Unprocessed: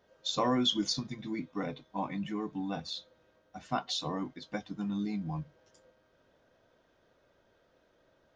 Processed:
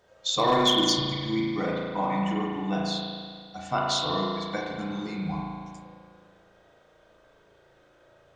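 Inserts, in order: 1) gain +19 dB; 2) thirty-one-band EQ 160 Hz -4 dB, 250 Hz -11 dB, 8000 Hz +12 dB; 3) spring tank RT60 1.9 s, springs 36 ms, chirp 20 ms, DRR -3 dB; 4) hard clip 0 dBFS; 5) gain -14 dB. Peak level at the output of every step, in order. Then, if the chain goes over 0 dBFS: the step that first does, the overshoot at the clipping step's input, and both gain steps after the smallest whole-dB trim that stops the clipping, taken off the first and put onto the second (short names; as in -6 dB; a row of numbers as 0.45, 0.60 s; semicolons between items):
+2.0, +2.0, +6.0, 0.0, -14.0 dBFS; step 1, 6.0 dB; step 1 +13 dB, step 5 -8 dB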